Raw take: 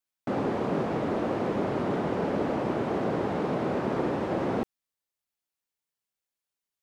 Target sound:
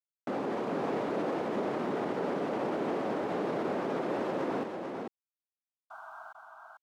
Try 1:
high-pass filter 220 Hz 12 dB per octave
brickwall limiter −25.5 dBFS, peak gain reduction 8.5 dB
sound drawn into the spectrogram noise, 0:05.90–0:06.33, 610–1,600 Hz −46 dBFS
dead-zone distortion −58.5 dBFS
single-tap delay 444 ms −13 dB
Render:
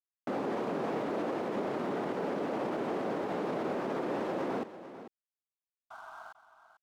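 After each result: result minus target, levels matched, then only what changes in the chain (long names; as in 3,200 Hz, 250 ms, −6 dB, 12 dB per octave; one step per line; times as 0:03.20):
echo-to-direct −8.5 dB; dead-zone distortion: distortion +8 dB
change: single-tap delay 444 ms −4.5 dB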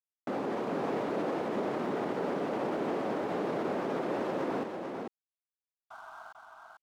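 dead-zone distortion: distortion +8 dB
change: dead-zone distortion −67 dBFS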